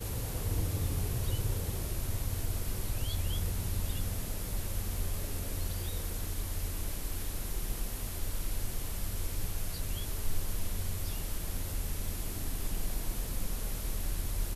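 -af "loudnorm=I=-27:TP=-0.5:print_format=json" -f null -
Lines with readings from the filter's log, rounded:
"input_i" : "-36.9",
"input_tp" : "-19.1",
"input_lra" : "2.8",
"input_thresh" : "-46.9",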